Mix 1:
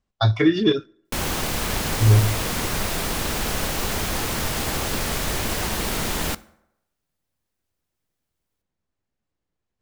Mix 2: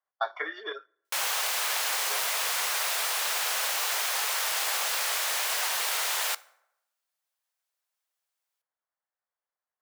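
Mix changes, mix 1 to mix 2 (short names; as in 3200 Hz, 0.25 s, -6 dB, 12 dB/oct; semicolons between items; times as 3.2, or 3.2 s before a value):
speech: add polynomial smoothing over 41 samples; master: add Bessel high-pass 940 Hz, order 8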